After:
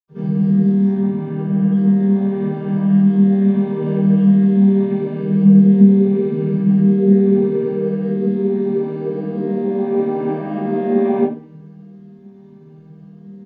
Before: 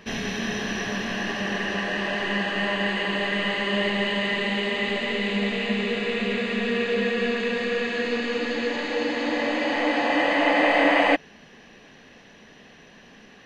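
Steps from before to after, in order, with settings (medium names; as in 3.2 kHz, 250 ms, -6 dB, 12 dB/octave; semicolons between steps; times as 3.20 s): vocoder on a held chord major triad, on D#3; 0.89–1.64 s: low-pass 3.8 kHz 24 dB/octave; in parallel at -10.5 dB: word length cut 8-bit, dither triangular; on the sum: reverberation, pre-delay 76 ms; endless flanger 4.7 ms +0.79 Hz; trim -7.5 dB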